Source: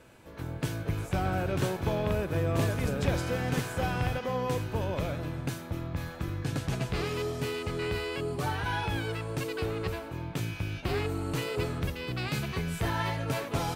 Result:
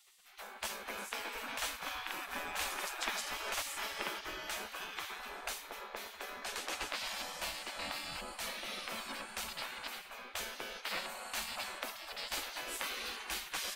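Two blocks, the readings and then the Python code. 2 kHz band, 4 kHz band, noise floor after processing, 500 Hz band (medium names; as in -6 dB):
-3.0 dB, +0.5 dB, -52 dBFS, -15.5 dB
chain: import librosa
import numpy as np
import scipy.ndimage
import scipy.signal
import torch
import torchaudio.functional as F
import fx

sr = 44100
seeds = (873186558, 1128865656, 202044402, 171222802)

y = fx.echo_bbd(x, sr, ms=330, stages=1024, feedback_pct=52, wet_db=-9.0)
y = fx.spec_gate(y, sr, threshold_db=-20, keep='weak')
y = F.gain(torch.from_numpy(y), 2.5).numpy()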